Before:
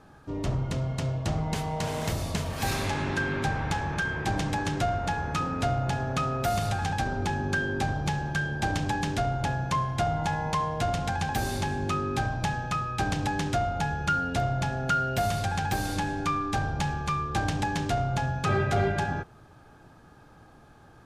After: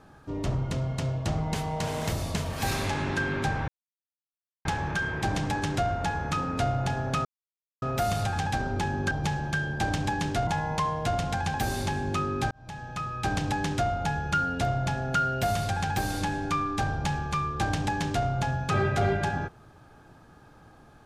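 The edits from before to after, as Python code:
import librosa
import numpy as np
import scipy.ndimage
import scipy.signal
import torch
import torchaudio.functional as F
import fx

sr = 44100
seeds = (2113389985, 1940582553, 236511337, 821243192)

y = fx.edit(x, sr, fx.insert_silence(at_s=3.68, length_s=0.97),
    fx.insert_silence(at_s=6.28, length_s=0.57),
    fx.cut(start_s=7.57, length_s=0.36),
    fx.cut(start_s=9.29, length_s=0.93),
    fx.fade_in_span(start_s=12.26, length_s=0.8), tone=tone)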